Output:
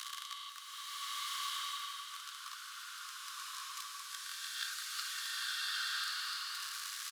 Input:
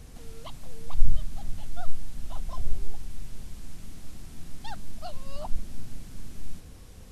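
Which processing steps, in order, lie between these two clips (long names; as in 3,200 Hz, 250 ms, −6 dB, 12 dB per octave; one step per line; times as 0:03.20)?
peak hold with a rise ahead of every peak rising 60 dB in 1.83 s
downward compressor, threshold −23 dBFS, peak gain reduction 16.5 dB
power curve on the samples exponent 0.5
Chebyshev high-pass with heavy ripple 1,100 Hz, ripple 6 dB
on a send: single-tap delay 192 ms −12.5 dB
on the sum: slow-attack reverb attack 1,340 ms, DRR −8 dB
level +1.5 dB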